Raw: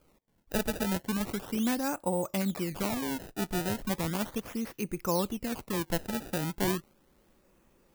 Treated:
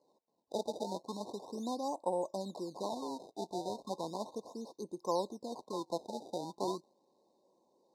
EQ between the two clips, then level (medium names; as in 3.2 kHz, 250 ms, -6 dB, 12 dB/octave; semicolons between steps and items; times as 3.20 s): band-pass 410–5800 Hz; brick-wall FIR band-stop 1.1–3.6 kHz; treble shelf 4 kHz -6.5 dB; -1.0 dB